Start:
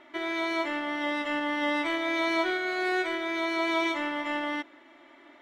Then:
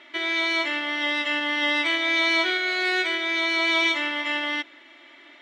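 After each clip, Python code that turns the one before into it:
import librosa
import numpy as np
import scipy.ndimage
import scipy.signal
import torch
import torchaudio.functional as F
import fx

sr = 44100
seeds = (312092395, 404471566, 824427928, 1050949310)

y = fx.weighting(x, sr, curve='D')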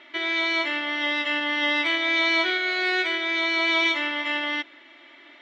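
y = scipy.signal.sosfilt(scipy.signal.butter(2, 5600.0, 'lowpass', fs=sr, output='sos'), x)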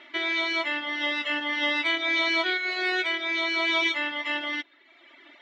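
y = fx.dereverb_blind(x, sr, rt60_s=1.0)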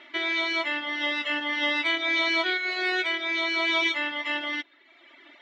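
y = x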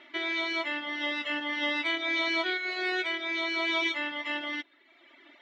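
y = fx.low_shelf(x, sr, hz=480.0, db=4.0)
y = F.gain(torch.from_numpy(y), -4.5).numpy()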